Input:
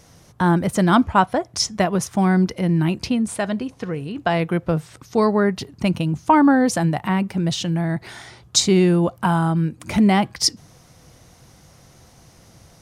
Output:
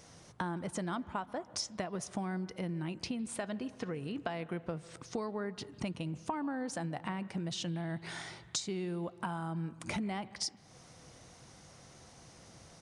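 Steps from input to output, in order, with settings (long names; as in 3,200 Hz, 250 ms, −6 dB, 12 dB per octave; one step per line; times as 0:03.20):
low-shelf EQ 120 Hz −8.5 dB
downward compressor 10 to 1, threshold −30 dBFS, peak gain reduction 19.5 dB
on a send at −17.5 dB: convolution reverb RT60 1.4 s, pre-delay 134 ms
on the sum: downsampling to 22,050 Hz
level −4.5 dB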